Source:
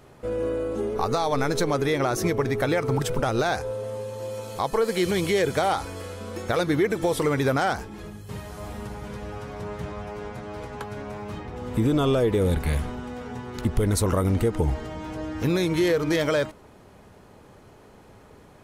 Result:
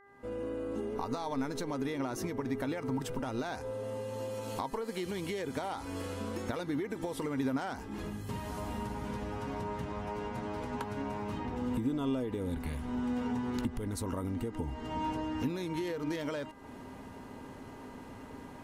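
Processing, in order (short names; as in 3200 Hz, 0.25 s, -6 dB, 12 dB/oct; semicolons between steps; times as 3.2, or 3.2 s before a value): opening faded in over 0.94 s; compressor 6:1, threshold -36 dBFS, peak gain reduction 17 dB; small resonant body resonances 260/940/2800 Hz, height 13 dB, ringing for 85 ms; buzz 400 Hz, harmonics 5, -60 dBFS -1 dB/oct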